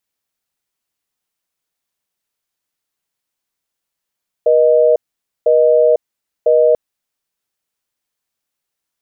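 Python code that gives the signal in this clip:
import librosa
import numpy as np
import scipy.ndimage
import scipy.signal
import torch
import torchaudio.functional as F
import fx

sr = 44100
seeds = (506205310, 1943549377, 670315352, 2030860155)

y = fx.call_progress(sr, length_s=2.29, kind='busy tone', level_db=-10.5)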